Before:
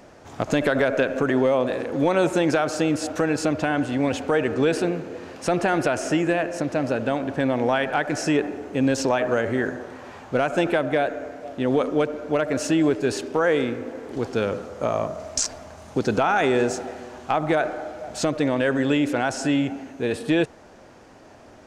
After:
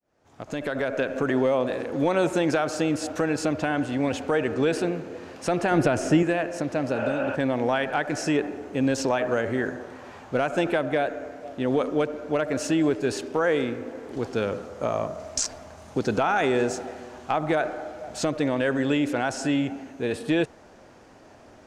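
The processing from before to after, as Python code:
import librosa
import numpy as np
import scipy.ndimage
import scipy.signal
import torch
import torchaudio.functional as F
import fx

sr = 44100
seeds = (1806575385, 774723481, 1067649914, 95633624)

y = fx.fade_in_head(x, sr, length_s=1.3)
y = fx.low_shelf(y, sr, hz=320.0, db=10.0, at=(5.71, 6.23))
y = fx.spec_repair(y, sr, seeds[0], start_s=6.98, length_s=0.35, low_hz=530.0, high_hz=3500.0, source='before')
y = y * 10.0 ** (-2.5 / 20.0)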